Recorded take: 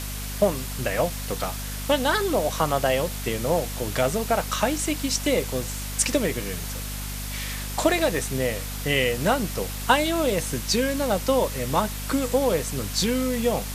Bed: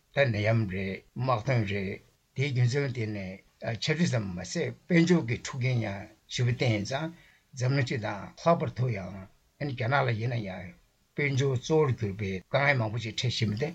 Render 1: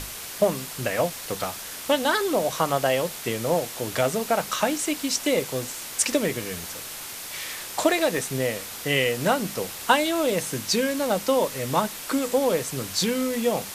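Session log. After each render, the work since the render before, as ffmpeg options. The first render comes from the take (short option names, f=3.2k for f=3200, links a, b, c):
-af "bandreject=f=50:t=h:w=6,bandreject=f=100:t=h:w=6,bandreject=f=150:t=h:w=6,bandreject=f=200:t=h:w=6,bandreject=f=250:t=h:w=6"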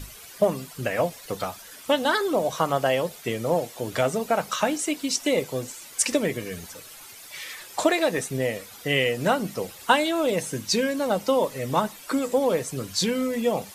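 -af "afftdn=nr=12:nf=-37"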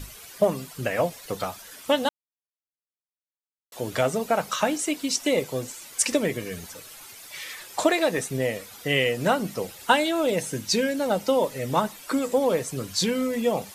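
-filter_complex "[0:a]asettb=1/sr,asplit=3[a][b][c];[a]atrim=end=9.674[d];[b]atrim=start=9.67:end=11.75,asetpts=PTS-STARTPTS,afade=t=in:d=0.004:c=qsin,afade=t=out:st=2.076:d=0.004:c=qsin,bandreject=f=1.1k:w=11[e];[c]atrim=start=11.746[f];[d][e]acrossfade=d=0.004:c1=hsin:c2=qsin[g];[g][f]acrossfade=d=0.004:c1=qsin:c2=hsin,asplit=3[h][i][j];[h]atrim=end=2.09,asetpts=PTS-STARTPTS,afade=t=out:st=2.086:d=0.004:c=hsin[k];[i]atrim=start=2.09:end=3.72,asetpts=PTS-STARTPTS,volume=0[l];[j]atrim=start=3.72,asetpts=PTS-STARTPTS,afade=t=in:d=0.004:c=hsin[m];[k][l][m]concat=n=3:v=0:a=1"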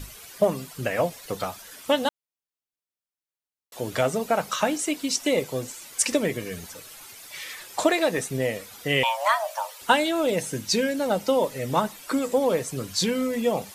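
-filter_complex "[0:a]asettb=1/sr,asplit=3[a][b][c];[a]atrim=end=9.034[d];[b]atrim=start=9.03:end=9.81,asetpts=PTS-STARTPTS,afade=t=in:d=0.004:c=qsin,afade=t=out:st=0.776:d=0.004:c=qsin,afreqshift=430[e];[c]atrim=start=9.806[f];[d][e]acrossfade=d=0.004:c1=hsin:c2=qsin[g];[g][f]acrossfade=d=0.004:c1=qsin:c2=hsin"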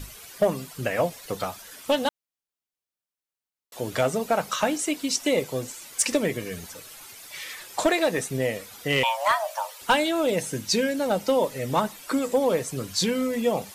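-af "volume=13dB,asoftclip=hard,volume=-13dB"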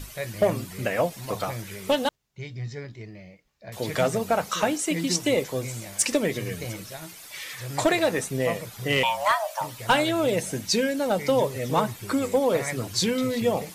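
-filter_complex "[1:a]volume=-8.5dB[a];[0:a][a]amix=inputs=2:normalize=0"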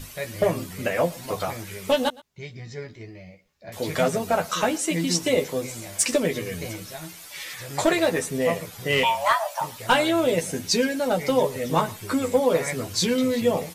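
-filter_complex "[0:a]asplit=2[a][b];[b]adelay=12,volume=-4.5dB[c];[a][c]amix=inputs=2:normalize=0,aecho=1:1:116:0.075"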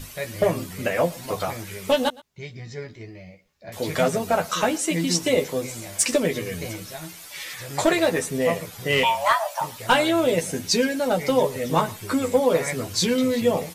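-af "volume=1dB"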